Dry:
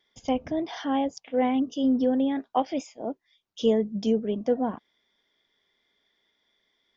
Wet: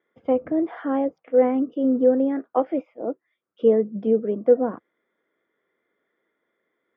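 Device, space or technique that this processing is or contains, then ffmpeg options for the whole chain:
bass cabinet: -af "highpass=f=89:w=0.5412,highpass=f=89:w=1.3066,equalizer=f=110:t=q:w=4:g=-9,equalizer=f=330:t=q:w=4:g=7,equalizer=f=500:t=q:w=4:g=9,equalizer=f=880:t=q:w=4:g=-4,equalizer=f=1.3k:t=q:w=4:g=8,lowpass=f=2k:w=0.5412,lowpass=f=2k:w=1.3066"

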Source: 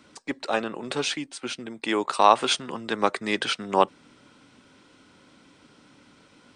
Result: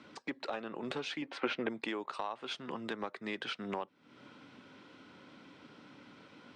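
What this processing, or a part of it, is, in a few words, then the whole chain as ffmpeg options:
AM radio: -filter_complex "[0:a]highpass=110,lowpass=3.8k,acompressor=threshold=-35dB:ratio=8,asoftclip=type=tanh:threshold=-23dB,asettb=1/sr,asplit=3[a][b][c];[a]atrim=end=1.224[d];[b]atrim=start=1.22:end=1.69,asetpts=PTS-STARTPTS,afade=t=in:d=0.004:c=qsin,afade=t=out:st=0.466:d=0.004:c=qsin,equalizer=f=500:t=o:w=1:g=9,equalizer=f=1k:t=o:w=1:g=7,equalizer=f=2k:t=o:w=1:g=7,equalizer=f=8k:t=o:w=1:g=-11[e];[c]atrim=start=1.686[f];[d][e]acrossfade=d=0.004:c1=hsin:c2=qsin[g];[g][f]acrossfade=d=0.004:c1=qsin:c2=hsin"

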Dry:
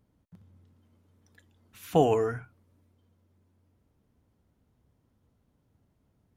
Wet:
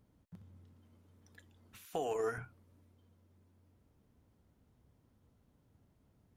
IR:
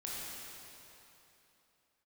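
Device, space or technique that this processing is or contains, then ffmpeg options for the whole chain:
de-esser from a sidechain: -filter_complex "[0:a]asettb=1/sr,asplit=3[a][b][c];[a]atrim=end=1.854[d];[b]atrim=start=1.85:end=2.38,asetpts=PTS-STARTPTS,afade=t=in:d=0.004:c=qsin,afade=t=out:st=0.526:d=0.004:c=qsin,bass=f=250:g=-14,treble=f=4k:g=7[e];[c]atrim=start=2.376[f];[d][e]acrossfade=d=0.004:c1=hsin:c2=qsin[g];[g][f]acrossfade=d=0.004:c1=qsin:c2=hsin,asplit=2[h][i];[i]highpass=5.1k,apad=whole_len=280561[j];[h][j]sidechaincompress=threshold=-56dB:ratio=12:attack=2.2:release=22"

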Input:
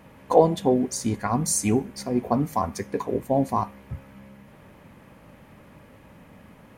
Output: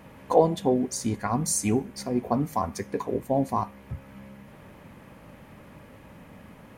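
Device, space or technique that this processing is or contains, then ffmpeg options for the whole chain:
parallel compression: -filter_complex "[0:a]asplit=2[a][b];[b]acompressor=threshold=-39dB:ratio=6,volume=-3.5dB[c];[a][c]amix=inputs=2:normalize=0,volume=-3dB"

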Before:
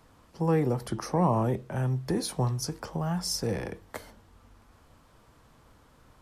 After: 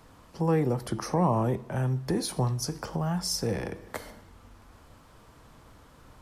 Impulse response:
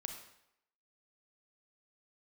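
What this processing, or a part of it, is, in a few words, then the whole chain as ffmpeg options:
compressed reverb return: -filter_complex "[0:a]asplit=2[a][b];[1:a]atrim=start_sample=2205[c];[b][c]afir=irnorm=-1:irlink=0,acompressor=threshold=-41dB:ratio=6,volume=1.5dB[d];[a][d]amix=inputs=2:normalize=0,volume=-1dB"

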